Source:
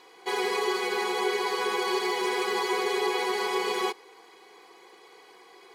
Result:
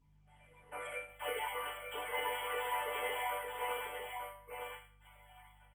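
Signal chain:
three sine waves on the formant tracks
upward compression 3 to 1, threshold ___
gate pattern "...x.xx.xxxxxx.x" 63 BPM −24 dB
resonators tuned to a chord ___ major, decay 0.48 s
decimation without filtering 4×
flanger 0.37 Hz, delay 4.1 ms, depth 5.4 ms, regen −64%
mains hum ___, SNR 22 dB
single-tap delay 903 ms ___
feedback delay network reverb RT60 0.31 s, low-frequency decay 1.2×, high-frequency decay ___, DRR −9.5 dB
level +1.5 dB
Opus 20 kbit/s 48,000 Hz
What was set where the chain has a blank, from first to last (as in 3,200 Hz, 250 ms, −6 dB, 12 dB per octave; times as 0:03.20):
−44 dBFS, G3, 50 Hz, −5.5 dB, 0.9×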